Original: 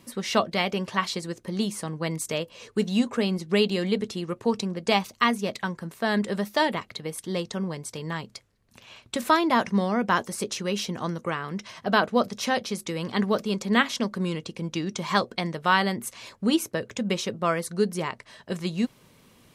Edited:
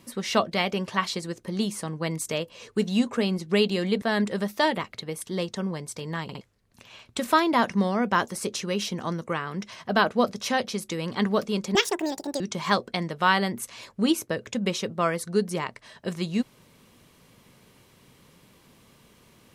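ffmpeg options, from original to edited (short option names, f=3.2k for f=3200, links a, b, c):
-filter_complex "[0:a]asplit=7[a][b][c][d][e][f][g];[a]atrim=end=4.022[h];[b]atrim=start=5.988:end=8.262[i];[c]atrim=start=8.198:end=8.262[j];[d]atrim=start=8.198:end=8.262[k];[e]atrim=start=8.378:end=13.724[l];[f]atrim=start=13.72:end=14.84,asetpts=PTS-STARTPTS,asetrate=75852,aresample=44100,atrim=end_sample=28716,asetpts=PTS-STARTPTS[m];[g]atrim=start=14.836[n];[h][i]acrossfade=d=0.004:c1=hsin:c2=hsin[o];[o][j]acrossfade=d=0.004:c1=hsin:c2=hsin[p];[p][k]acrossfade=d=0.004:c1=hsin:c2=hsin[q];[q][l]acrossfade=d=0.004:c1=hsin:c2=hsin[r];[r][m]acrossfade=d=0.004:c1=hsin:c2=hsin[s];[s][n]acrossfade=d=0.004:c1=hsin:c2=hsin"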